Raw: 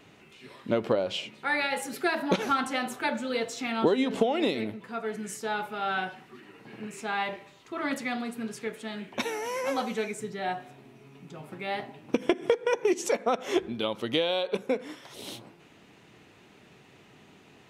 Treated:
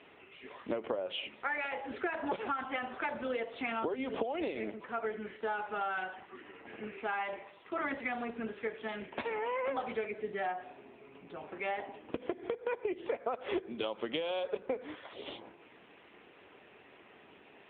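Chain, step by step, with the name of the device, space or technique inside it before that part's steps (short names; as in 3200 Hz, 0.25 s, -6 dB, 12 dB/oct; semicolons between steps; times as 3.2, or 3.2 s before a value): voicemail (BPF 350–3300 Hz; compressor 10:1, threshold -33 dBFS, peak gain reduction 14 dB; gain +2.5 dB; AMR-NB 7.95 kbps 8000 Hz)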